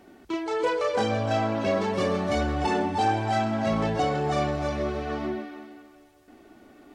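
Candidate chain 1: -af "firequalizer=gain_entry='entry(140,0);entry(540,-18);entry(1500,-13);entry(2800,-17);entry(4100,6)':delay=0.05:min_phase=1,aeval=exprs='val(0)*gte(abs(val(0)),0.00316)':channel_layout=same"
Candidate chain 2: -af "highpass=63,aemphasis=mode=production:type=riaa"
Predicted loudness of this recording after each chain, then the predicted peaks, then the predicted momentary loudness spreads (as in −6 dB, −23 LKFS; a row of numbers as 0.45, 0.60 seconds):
−33.0, −27.5 LKFS; −19.0, −13.0 dBFS; 9, 9 LU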